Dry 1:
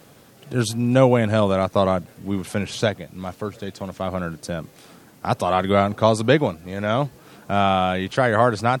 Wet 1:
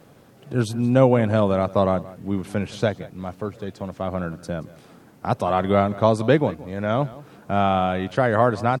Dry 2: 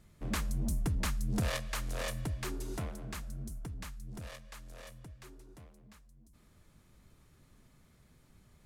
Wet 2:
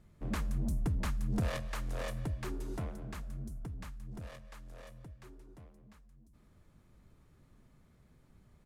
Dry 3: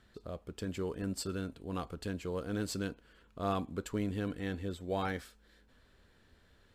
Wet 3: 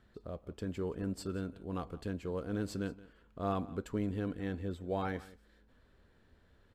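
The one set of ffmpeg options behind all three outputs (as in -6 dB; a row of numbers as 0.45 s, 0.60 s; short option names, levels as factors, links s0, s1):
-filter_complex "[0:a]highshelf=f=2100:g=-9,asplit=2[s0][s1];[s1]aecho=0:1:175:0.112[s2];[s0][s2]amix=inputs=2:normalize=0"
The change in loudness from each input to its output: -1.0 LU, -1.0 LU, -0.5 LU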